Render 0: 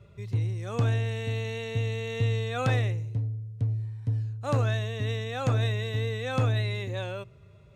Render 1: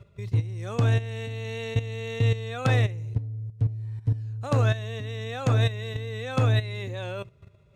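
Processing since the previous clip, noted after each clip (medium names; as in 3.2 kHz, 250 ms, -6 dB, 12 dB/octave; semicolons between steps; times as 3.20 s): level held to a coarse grid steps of 13 dB; trim +6 dB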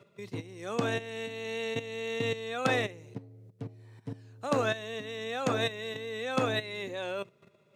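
high-pass 190 Hz 24 dB/octave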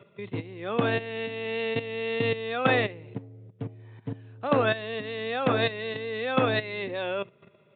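resampled via 8 kHz; trim +5 dB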